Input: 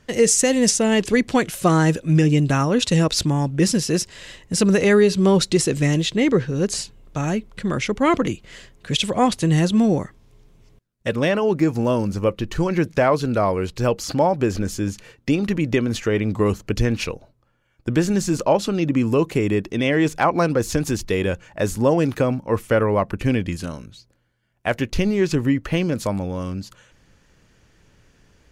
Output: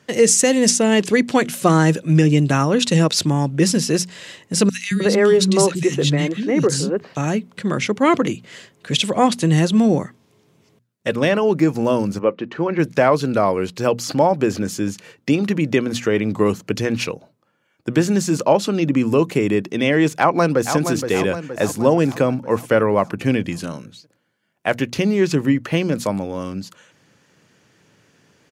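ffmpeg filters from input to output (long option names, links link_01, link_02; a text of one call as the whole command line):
ffmpeg -i in.wav -filter_complex "[0:a]asettb=1/sr,asplit=3[link_01][link_02][link_03];[link_01]atrim=end=4.694[link_04];[link_02]atrim=start=4.69:end=7.17,asetpts=PTS-STARTPTS,afade=type=in:duration=0.004:curve=qsin,afade=type=out:start_time=2.476:duration=0.004:curve=qsin,acrossover=split=240|2100[link_05][link_06][link_07];[link_05]adelay=220[link_08];[link_06]adelay=310[link_09];[link_08][link_09][link_07]amix=inputs=3:normalize=0,atrim=end_sample=109368[link_10];[link_03]atrim=start=7.166[link_11];[link_04][link_10]acrossfade=duration=0.004:curve1=hsin:curve2=qsin[link_12];[link_12][link_11]acrossfade=duration=0.004:curve1=qsin:curve2=hsin,asplit=3[link_13][link_14][link_15];[link_13]afade=type=out:start_time=12.18:duration=0.02[link_16];[link_14]highpass=220,lowpass=2300,afade=type=in:start_time=12.18:duration=0.02,afade=type=out:start_time=12.78:duration=0.02[link_17];[link_15]afade=type=in:start_time=12.78:duration=0.02[link_18];[link_16][link_17][link_18]amix=inputs=3:normalize=0,asplit=2[link_19][link_20];[link_20]afade=type=in:start_time=20.18:duration=0.01,afade=type=out:start_time=20.77:duration=0.01,aecho=0:1:470|940|1410|1880|2350|2820|3290:0.398107|0.218959|0.120427|0.0662351|0.0364293|0.0200361|0.0110199[link_21];[link_19][link_21]amix=inputs=2:normalize=0,highpass=frequency=120:width=0.5412,highpass=frequency=120:width=1.3066,bandreject=frequency=60:width_type=h:width=6,bandreject=frequency=120:width_type=h:width=6,bandreject=frequency=180:width_type=h:width=6,bandreject=frequency=240:width_type=h:width=6,volume=2.5dB" out.wav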